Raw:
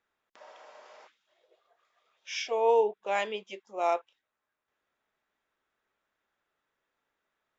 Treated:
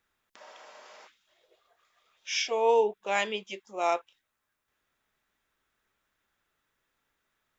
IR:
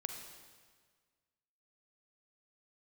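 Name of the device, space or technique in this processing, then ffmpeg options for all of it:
smiley-face EQ: -af "lowshelf=frequency=130:gain=8.5,equalizer=frequency=590:width_type=o:width=1.8:gain=-5,highshelf=frequency=5600:gain=6,volume=4dB"

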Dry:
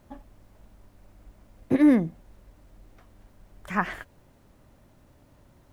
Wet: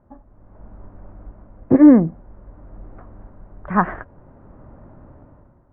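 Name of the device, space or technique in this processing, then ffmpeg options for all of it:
action camera in a waterproof case: -af "lowpass=frequency=1400:width=0.5412,lowpass=frequency=1400:width=1.3066,dynaudnorm=framelen=120:gausssize=9:maxgain=14dB" -ar 44100 -c:a aac -b:a 64k

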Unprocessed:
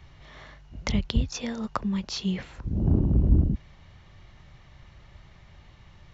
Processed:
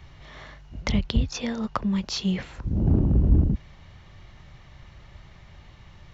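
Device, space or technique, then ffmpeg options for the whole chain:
parallel distortion: -filter_complex "[0:a]asplit=2[link_01][link_02];[link_02]asoftclip=type=hard:threshold=-24.5dB,volume=-7dB[link_03];[link_01][link_03]amix=inputs=2:normalize=0,asettb=1/sr,asplit=3[link_04][link_05][link_06];[link_04]atrim=end=0.814[link_07];[link_05]atrim=start=0.81:end=1.89,asetpts=PTS-STARTPTS,afade=type=in:duration=0.004:curve=qsin,afade=type=out:start_time=1.076:duration=0.004:curve=qsin,lowpass=6200[link_08];[link_06]atrim=start=1.886[link_09];[link_07][link_08]acrossfade=duration=0.004:curve1=hsin:curve2=qsin[link_10];[link_10][link_09]acrossfade=duration=0.004:curve1=qsin:curve2=hsin"

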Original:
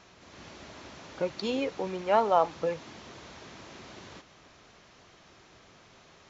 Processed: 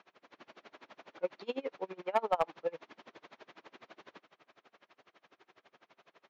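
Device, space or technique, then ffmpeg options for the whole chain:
helicopter radio: -af "highpass=320,lowpass=3000,aeval=exprs='val(0)*pow(10,-29*(0.5-0.5*cos(2*PI*12*n/s))/20)':channel_layout=same,asoftclip=type=hard:threshold=-19.5dB"

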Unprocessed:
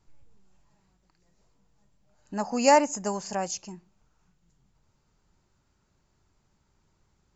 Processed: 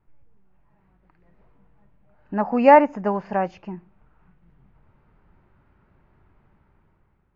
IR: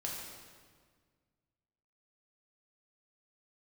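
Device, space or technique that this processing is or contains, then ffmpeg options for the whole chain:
action camera in a waterproof case: -af "lowpass=frequency=2300:width=0.5412,lowpass=frequency=2300:width=1.3066,dynaudnorm=framelen=270:gausssize=7:maxgain=11dB" -ar 16000 -c:a aac -b:a 64k

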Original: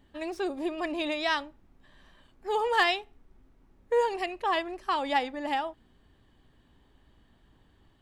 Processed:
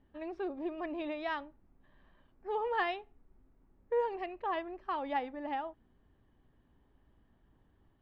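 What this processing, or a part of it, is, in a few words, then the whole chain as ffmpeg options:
phone in a pocket: -af "lowpass=3000,highshelf=frequency=2100:gain=-9,volume=-5.5dB"

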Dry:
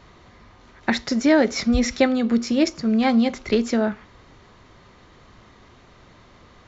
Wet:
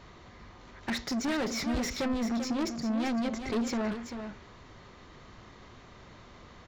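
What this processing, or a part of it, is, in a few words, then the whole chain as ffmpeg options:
saturation between pre-emphasis and de-emphasis: -filter_complex "[0:a]asettb=1/sr,asplit=3[link_01][link_02][link_03];[link_01]atrim=end=2.004[link_04];[link_02]atrim=start=2:end=3.67,asetpts=PTS-STARTPTS,afade=type=in:duration=0.004:curve=qsin,afade=type=out:start_time=1.666:duration=0.004:curve=qsin,equalizer=frequency=2500:width=0.47:gain=-4.5[link_05];[link_03]atrim=start=3.666[link_06];[link_04][link_05]acrossfade=duration=0.004:curve1=hsin:curve2=qsin[link_07];[link_07][link_06]acrossfade=duration=0.004:curve1=qsin:curve2=hsin,highshelf=frequency=5200:gain=8,asoftclip=type=tanh:threshold=-26dB,highshelf=frequency=5200:gain=-8,aecho=1:1:390:0.376,volume=-2dB"

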